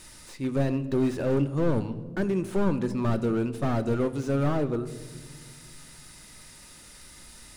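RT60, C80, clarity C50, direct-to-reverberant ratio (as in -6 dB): 1.5 s, 16.5 dB, 14.5 dB, 10.5 dB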